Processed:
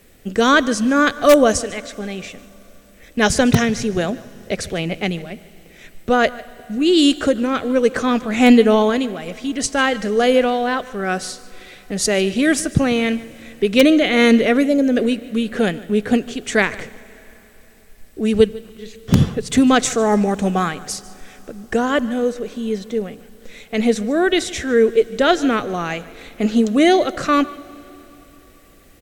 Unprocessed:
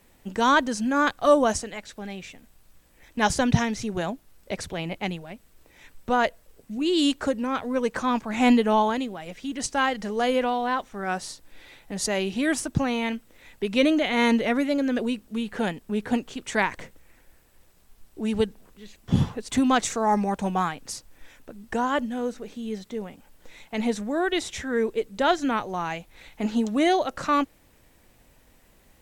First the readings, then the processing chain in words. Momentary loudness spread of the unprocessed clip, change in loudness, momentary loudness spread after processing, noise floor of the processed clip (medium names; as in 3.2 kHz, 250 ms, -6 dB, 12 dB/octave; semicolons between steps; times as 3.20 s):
15 LU, +8.0 dB, 16 LU, -47 dBFS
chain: peaking EQ 920 Hz -14 dB 0.31 oct; on a send: delay 149 ms -20 dB; on the sum: Schroeder reverb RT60 3.7 s, combs from 31 ms, DRR 19.5 dB; time-frequency box 14.65–14.96 s, 890–5000 Hz -7 dB; peaking EQ 440 Hz +4 dB 0.42 oct; in parallel at -6 dB: integer overflow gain 9.5 dB; on the sum: trim +4.5 dB